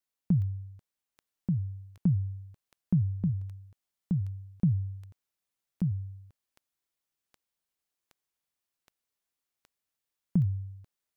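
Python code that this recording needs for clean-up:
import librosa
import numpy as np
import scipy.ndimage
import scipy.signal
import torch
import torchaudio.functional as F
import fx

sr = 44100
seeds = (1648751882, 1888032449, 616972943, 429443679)

y = fx.fix_declick_ar(x, sr, threshold=10.0)
y = fx.fix_echo_inverse(y, sr, delay_ms=1184, level_db=-3.5)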